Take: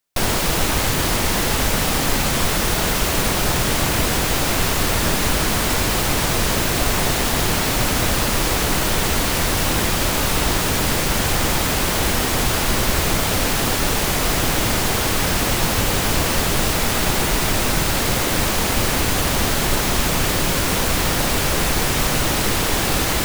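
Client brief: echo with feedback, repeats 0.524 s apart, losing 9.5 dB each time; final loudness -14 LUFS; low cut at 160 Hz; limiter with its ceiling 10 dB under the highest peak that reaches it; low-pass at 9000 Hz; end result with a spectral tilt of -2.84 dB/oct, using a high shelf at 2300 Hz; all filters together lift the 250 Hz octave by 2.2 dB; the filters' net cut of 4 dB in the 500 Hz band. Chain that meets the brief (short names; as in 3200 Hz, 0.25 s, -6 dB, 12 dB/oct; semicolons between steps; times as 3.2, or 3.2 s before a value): HPF 160 Hz; LPF 9000 Hz; bell 250 Hz +6 dB; bell 500 Hz -7.5 dB; high shelf 2300 Hz +5.5 dB; limiter -16 dBFS; feedback echo 0.524 s, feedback 33%, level -9.5 dB; gain +9 dB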